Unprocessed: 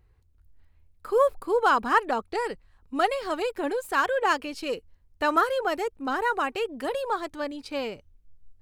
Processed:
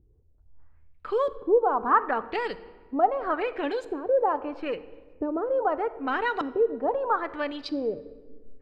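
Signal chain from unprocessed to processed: compression 2:1, threshold -26 dBFS, peak gain reduction 6 dB; LFO low-pass saw up 0.78 Hz 300–4500 Hz; reverberation RT60 1.5 s, pre-delay 7 ms, DRR 13 dB

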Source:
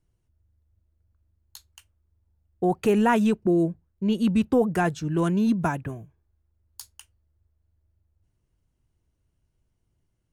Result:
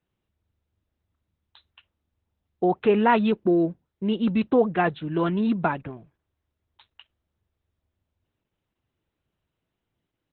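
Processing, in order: high-pass 330 Hz 6 dB/octave; trim +4 dB; Opus 8 kbps 48 kHz

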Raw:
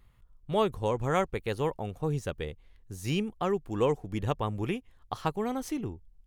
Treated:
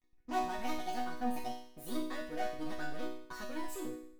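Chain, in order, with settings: gliding tape speed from 175% -> 124%; waveshaping leveller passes 5; chord resonator B3 major, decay 0.67 s; trim +1.5 dB

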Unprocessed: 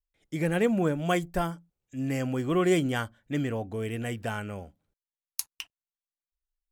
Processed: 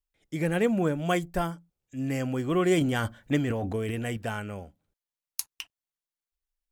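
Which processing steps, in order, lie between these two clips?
2.77–4.17 s: transient shaper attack +7 dB, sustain +11 dB

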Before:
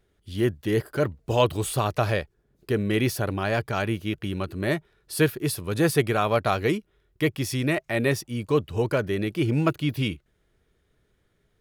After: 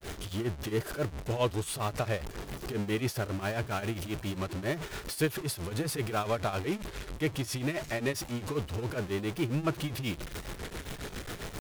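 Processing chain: jump at every zero crossing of -22.5 dBFS; granulator 193 ms, grains 7.4 per s, spray 15 ms, pitch spread up and down by 0 st; trim -8.5 dB

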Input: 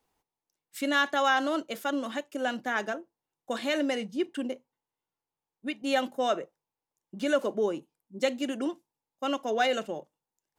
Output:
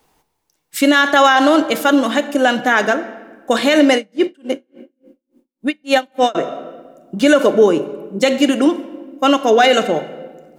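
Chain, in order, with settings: simulated room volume 1300 m³, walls mixed, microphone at 0.48 m; loudness maximiser +18 dB; 3.95–6.35 s: logarithmic tremolo 3.5 Hz, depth 36 dB; trim -1 dB

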